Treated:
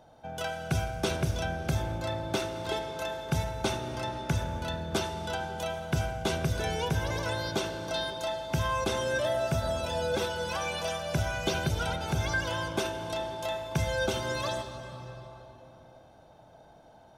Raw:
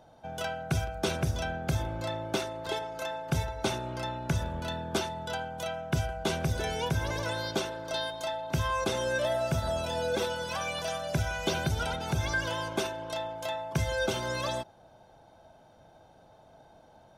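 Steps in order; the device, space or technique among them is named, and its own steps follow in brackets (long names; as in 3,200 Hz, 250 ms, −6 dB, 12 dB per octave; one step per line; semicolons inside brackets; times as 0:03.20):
compressed reverb return (on a send at −5 dB: convolution reverb RT60 3.1 s, pre-delay 69 ms + downward compressor, threshold −32 dBFS, peak gain reduction 8 dB)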